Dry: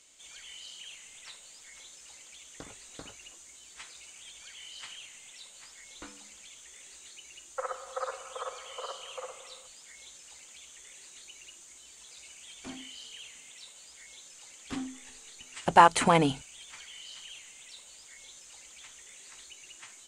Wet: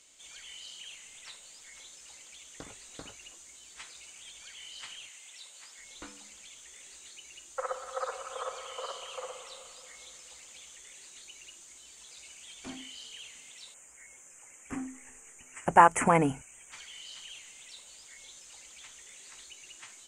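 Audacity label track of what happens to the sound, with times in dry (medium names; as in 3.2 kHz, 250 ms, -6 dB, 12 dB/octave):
5.080000	5.770000	high-pass 750 Hz -> 310 Hz 6 dB/octave
7.470000	10.760000	echo whose repeats swap between lows and highs 120 ms, split 930 Hz, feedback 75%, level -8 dB
13.740000	16.720000	Chebyshev band-stop 2.2–7.1 kHz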